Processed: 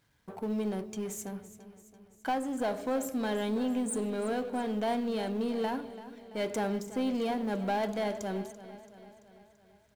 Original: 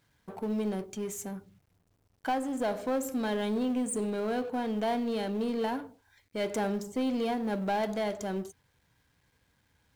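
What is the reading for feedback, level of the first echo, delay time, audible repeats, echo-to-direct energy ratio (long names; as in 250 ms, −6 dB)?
57%, −15.0 dB, 336 ms, 5, −13.5 dB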